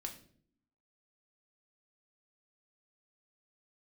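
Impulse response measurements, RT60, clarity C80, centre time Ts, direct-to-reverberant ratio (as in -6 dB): 0.55 s, 14.5 dB, 13 ms, 2.5 dB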